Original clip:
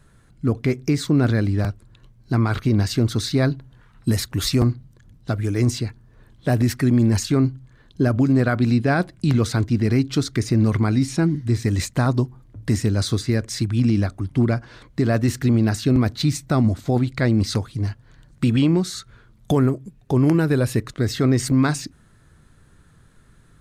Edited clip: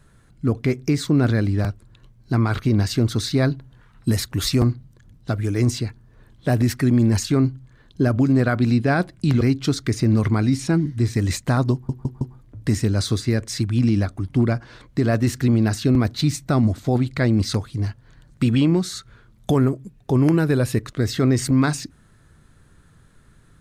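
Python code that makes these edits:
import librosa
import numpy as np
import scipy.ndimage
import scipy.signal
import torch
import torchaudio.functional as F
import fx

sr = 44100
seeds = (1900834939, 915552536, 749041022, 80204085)

y = fx.edit(x, sr, fx.cut(start_s=9.41, length_s=0.49),
    fx.stutter(start_s=12.22, slice_s=0.16, count=4), tone=tone)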